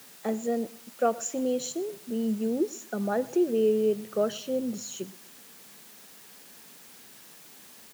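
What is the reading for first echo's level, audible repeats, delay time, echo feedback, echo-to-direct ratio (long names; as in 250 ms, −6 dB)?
−22.0 dB, 2, 121 ms, 29%, −21.5 dB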